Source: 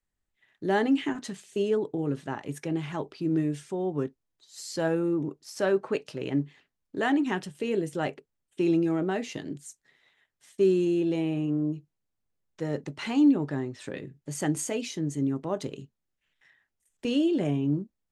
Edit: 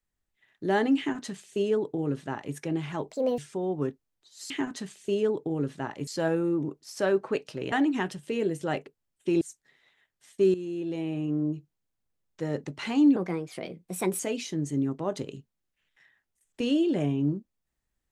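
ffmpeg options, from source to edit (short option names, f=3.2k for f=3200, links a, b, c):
-filter_complex "[0:a]asplit=10[a][b][c][d][e][f][g][h][i][j];[a]atrim=end=3.114[k];[b]atrim=start=3.11:end=3.55,asetpts=PTS-STARTPTS,asetrate=71442,aresample=44100[l];[c]atrim=start=3.546:end=4.672[m];[d]atrim=start=0.978:end=2.552[n];[e]atrim=start=4.668:end=6.322[o];[f]atrim=start=7.038:end=8.732[p];[g]atrim=start=9.608:end=10.74,asetpts=PTS-STARTPTS,afade=t=out:st=1.128:d=0.004:c=hsin:silence=0.237137[q];[h]atrim=start=10.74:end=13.364,asetpts=PTS-STARTPTS,afade=t=in:d=0.91:silence=0.237137[r];[i]atrim=start=13.36:end=14.64,asetpts=PTS-STARTPTS,asetrate=54684,aresample=44100[s];[j]atrim=start=14.636[t];[k][l]acrossfade=d=0.004:c1=hsin:c2=hsin[u];[u][m]acrossfade=d=0.004:c1=hsin:c2=hsin[v];[v][n]acrossfade=d=0.004:c1=hsin:c2=hsin[w];[w][o]acrossfade=d=0.004:c1=hsin:c2=hsin[x];[x][p]acrossfade=d=0.004:c1=hsin:c2=hsin[y];[q][r]concat=n=2:v=0:a=1[z];[y][z]acrossfade=d=0.004:c1=hsin:c2=hsin[aa];[aa][s]acrossfade=d=0.004:c1=hsin:c2=hsin[ab];[ab][t]acrossfade=d=0.004:c1=hsin:c2=hsin"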